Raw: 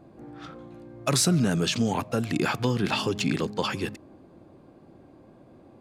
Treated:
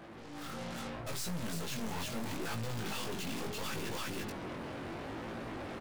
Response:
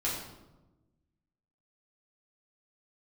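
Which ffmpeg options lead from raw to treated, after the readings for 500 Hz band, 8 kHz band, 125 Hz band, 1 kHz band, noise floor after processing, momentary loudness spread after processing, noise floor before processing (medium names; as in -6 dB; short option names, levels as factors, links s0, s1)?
-11.5 dB, -12.0 dB, -13.0 dB, -9.0 dB, -48 dBFS, 4 LU, -54 dBFS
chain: -filter_complex "[0:a]bandreject=f=50:t=h:w=6,bandreject=f=100:t=h:w=6,bandreject=f=150:t=h:w=6,bandreject=f=200:t=h:w=6,bandreject=f=250:t=h:w=6,bandreject=f=300:t=h:w=6,bandreject=f=350:t=h:w=6,aecho=1:1:339:0.376,areverse,acompressor=threshold=0.0251:ratio=5,areverse,aeval=exprs='(tanh(282*val(0)+0.25)-tanh(0.25))/282':c=same,asplit=2[s0][s1];[s1]aeval=exprs='0.00447*sin(PI/2*4.47*val(0)/0.00447)':c=same,volume=0.422[s2];[s0][s2]amix=inputs=2:normalize=0,flanger=delay=17.5:depth=5:speed=0.75,dynaudnorm=f=320:g=3:m=2.82,volume=1.78"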